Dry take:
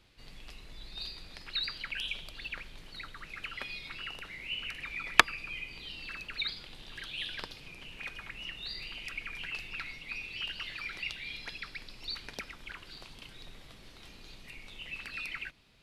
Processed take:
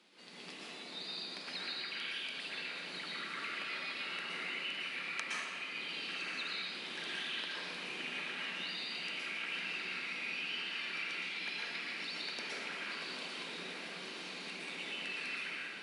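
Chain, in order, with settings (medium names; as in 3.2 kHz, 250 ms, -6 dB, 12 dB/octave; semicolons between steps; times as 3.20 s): steep high-pass 180 Hz 48 dB/octave; compression 5:1, threshold -44 dBFS, peak gain reduction 27 dB; brick-wall FIR low-pass 11 kHz; echo that smears into a reverb 1013 ms, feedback 76%, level -9 dB; plate-style reverb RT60 2 s, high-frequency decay 0.5×, pre-delay 105 ms, DRR -6.5 dB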